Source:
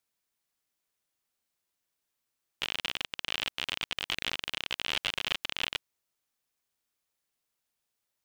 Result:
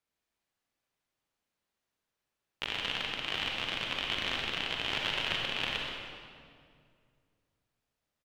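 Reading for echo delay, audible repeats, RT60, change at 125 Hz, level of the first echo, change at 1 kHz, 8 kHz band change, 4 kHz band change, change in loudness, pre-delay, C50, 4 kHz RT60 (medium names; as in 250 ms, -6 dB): 127 ms, 1, 2.2 s, +5.5 dB, -9.0 dB, +3.0 dB, -5.0 dB, 0.0 dB, 0.0 dB, 36 ms, -0.5 dB, 1.6 s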